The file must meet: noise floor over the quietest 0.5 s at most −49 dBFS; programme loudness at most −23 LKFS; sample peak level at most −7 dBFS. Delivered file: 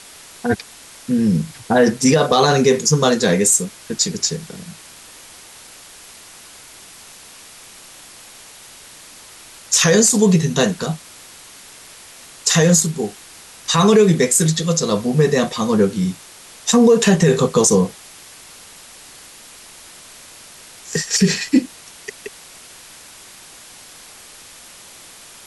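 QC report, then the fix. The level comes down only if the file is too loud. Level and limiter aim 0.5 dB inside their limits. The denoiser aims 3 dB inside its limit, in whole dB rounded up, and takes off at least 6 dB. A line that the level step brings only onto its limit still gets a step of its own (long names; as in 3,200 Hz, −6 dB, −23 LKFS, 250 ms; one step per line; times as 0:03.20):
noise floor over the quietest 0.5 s −41 dBFS: out of spec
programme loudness −16.0 LKFS: out of spec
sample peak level −3.5 dBFS: out of spec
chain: broadband denoise 6 dB, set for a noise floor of −41 dBFS
level −7.5 dB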